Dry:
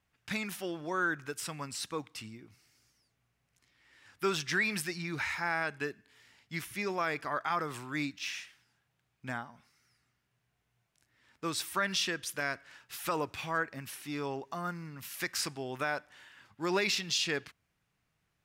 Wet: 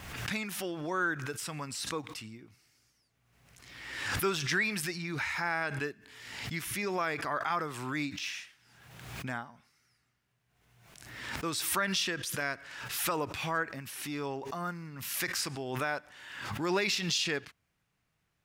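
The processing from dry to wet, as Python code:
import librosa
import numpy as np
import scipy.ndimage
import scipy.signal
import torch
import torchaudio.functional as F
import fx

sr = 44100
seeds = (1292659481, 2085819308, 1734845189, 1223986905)

y = fx.pre_swell(x, sr, db_per_s=45.0)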